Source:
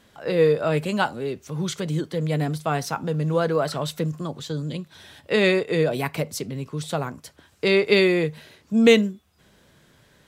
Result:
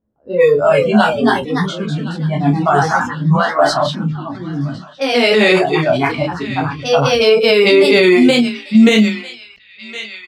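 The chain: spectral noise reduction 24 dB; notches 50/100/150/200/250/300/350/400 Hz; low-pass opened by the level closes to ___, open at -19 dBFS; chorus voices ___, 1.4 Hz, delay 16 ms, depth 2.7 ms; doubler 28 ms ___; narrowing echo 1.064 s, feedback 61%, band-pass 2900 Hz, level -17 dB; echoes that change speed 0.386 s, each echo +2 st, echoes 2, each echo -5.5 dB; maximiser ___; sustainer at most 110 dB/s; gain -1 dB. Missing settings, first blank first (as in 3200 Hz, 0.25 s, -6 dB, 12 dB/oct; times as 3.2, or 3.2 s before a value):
450 Hz, 4, -7 dB, +16 dB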